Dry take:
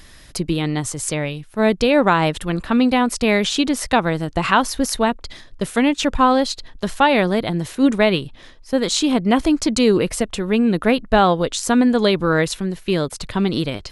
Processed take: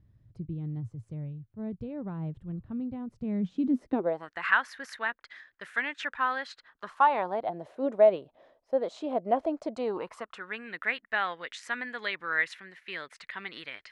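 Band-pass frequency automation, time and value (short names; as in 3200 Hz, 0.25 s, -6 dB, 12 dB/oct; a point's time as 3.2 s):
band-pass, Q 4.4
3.06 s 110 Hz
3.97 s 320 Hz
4.32 s 1700 Hz
6.45 s 1700 Hz
7.64 s 630 Hz
9.69 s 630 Hz
10.65 s 1900 Hz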